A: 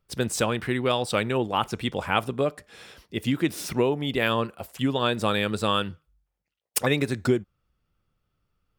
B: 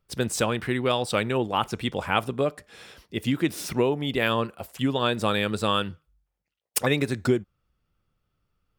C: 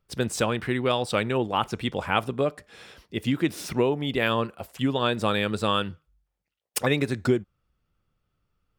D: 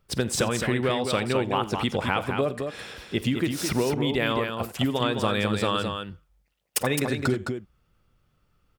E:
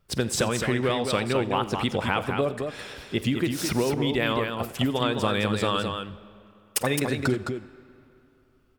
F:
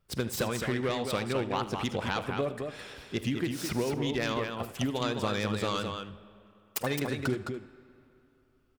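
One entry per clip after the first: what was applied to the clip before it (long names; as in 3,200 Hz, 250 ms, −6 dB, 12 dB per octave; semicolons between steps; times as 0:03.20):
no processing that can be heard
high-shelf EQ 7,200 Hz −5 dB
downward compressor, threshold −29 dBFS, peak gain reduction 12 dB; multi-tap delay 48/86/213 ms −19.5/−19/−6 dB; level +7 dB
pitch vibrato 7.6 Hz 44 cents; on a send at −19 dB: convolution reverb RT60 2.9 s, pre-delay 40 ms
phase distortion by the signal itself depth 0.17 ms; single-tap delay 76 ms −18 dB; level −5.5 dB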